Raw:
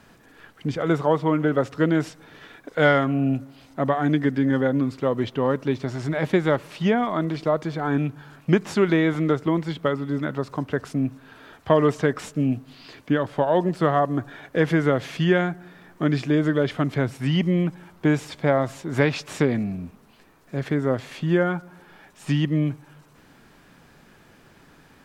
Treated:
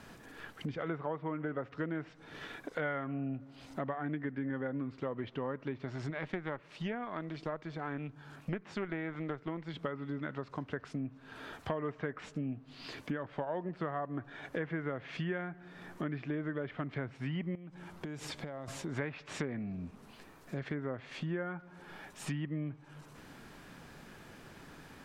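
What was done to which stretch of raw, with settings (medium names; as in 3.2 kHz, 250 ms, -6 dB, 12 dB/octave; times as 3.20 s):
6.10–9.74 s: valve stage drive 10 dB, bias 0.7
17.55–18.68 s: compression, threshold -34 dBFS
whole clip: low-pass that closes with the level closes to 2 kHz, closed at -18.5 dBFS; dynamic bell 2 kHz, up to +6 dB, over -41 dBFS, Q 0.96; compression 3:1, threshold -40 dBFS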